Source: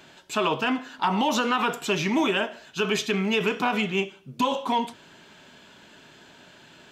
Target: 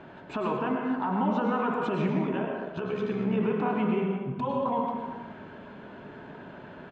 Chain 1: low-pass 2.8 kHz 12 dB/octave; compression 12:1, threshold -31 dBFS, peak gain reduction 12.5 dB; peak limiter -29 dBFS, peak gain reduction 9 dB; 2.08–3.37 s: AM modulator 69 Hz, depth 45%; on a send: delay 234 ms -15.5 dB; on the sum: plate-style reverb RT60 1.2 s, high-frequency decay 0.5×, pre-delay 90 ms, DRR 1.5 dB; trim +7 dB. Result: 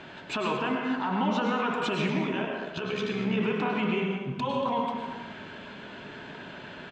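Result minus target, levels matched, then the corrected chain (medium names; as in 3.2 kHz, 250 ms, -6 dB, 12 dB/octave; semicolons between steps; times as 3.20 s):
2 kHz band +5.5 dB
low-pass 1.2 kHz 12 dB/octave; compression 12:1, threshold -31 dBFS, peak gain reduction 12.5 dB; peak limiter -29 dBFS, peak gain reduction 7 dB; 2.08–3.37 s: AM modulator 69 Hz, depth 45%; on a send: delay 234 ms -15.5 dB; on the sum: plate-style reverb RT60 1.2 s, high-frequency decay 0.5×, pre-delay 90 ms, DRR 1.5 dB; trim +7 dB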